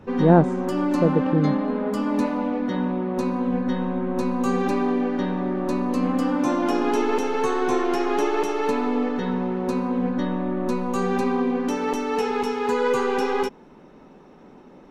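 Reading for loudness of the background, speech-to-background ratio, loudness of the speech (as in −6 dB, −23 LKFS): −24.0 LKFS, 3.0 dB, −21.0 LKFS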